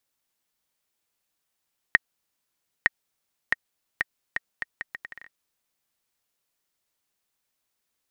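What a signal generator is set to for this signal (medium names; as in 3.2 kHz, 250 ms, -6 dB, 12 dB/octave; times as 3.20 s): bouncing ball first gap 0.91 s, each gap 0.73, 1.87 kHz, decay 24 ms -2 dBFS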